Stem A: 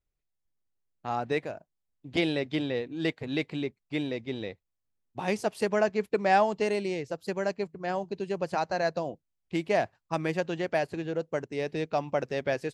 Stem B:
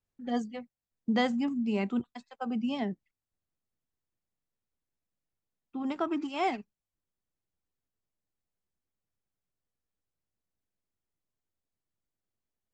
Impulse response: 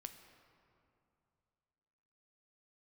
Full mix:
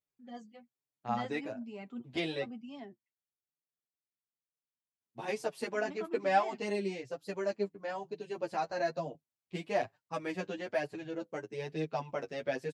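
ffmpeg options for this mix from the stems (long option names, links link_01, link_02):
-filter_complex "[0:a]asplit=2[link_01][link_02];[link_02]adelay=8.2,afreqshift=0.31[link_03];[link_01][link_03]amix=inputs=2:normalize=1,volume=0.5dB,asplit=3[link_04][link_05][link_06];[link_04]atrim=end=2.5,asetpts=PTS-STARTPTS,afade=type=out:start_time=2.496:duration=0.004:curve=hsin[link_07];[link_05]atrim=start=2.5:end=5.01,asetpts=PTS-STARTPTS,volume=0[link_08];[link_06]atrim=start=5.01,asetpts=PTS-STARTPTS,afade=type=in:duration=0.004:curve=hsin[link_09];[link_07][link_08][link_09]concat=n=3:v=0:a=1[link_10];[1:a]volume=-10.5dB[link_11];[link_10][link_11]amix=inputs=2:normalize=0,highpass=120,flanger=delay=6.4:depth=4.2:regen=21:speed=1.1:shape=triangular"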